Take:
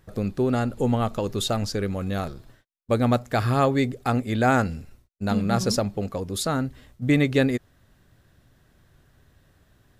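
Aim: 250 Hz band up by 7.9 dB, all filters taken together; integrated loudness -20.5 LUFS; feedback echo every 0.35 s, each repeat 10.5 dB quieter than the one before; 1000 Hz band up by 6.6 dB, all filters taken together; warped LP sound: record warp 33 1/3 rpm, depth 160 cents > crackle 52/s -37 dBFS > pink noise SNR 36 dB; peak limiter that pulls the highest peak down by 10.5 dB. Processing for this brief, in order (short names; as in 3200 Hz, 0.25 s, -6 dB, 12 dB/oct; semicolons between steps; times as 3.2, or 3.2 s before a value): bell 250 Hz +8.5 dB; bell 1000 Hz +9 dB; limiter -13.5 dBFS; feedback echo 0.35 s, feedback 30%, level -10.5 dB; record warp 33 1/3 rpm, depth 160 cents; crackle 52/s -37 dBFS; pink noise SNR 36 dB; gain +3 dB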